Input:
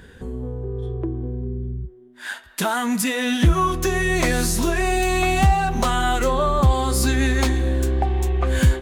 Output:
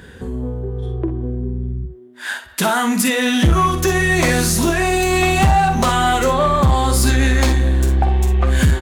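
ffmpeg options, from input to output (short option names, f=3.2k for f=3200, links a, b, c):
-af "aecho=1:1:47|60:0.316|0.316,asoftclip=type=tanh:threshold=-11.5dB,highpass=58,volume=5.5dB"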